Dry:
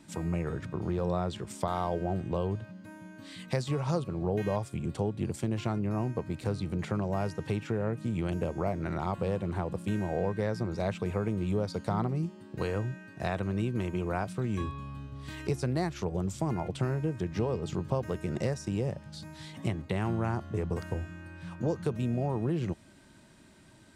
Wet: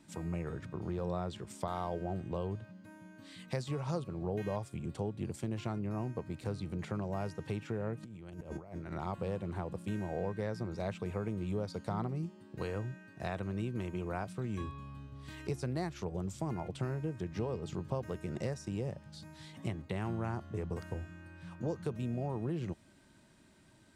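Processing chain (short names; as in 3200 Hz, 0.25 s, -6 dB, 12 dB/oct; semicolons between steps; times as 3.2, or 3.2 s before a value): 8.03–8.92 negative-ratio compressor -37 dBFS, ratio -0.5; gain -6 dB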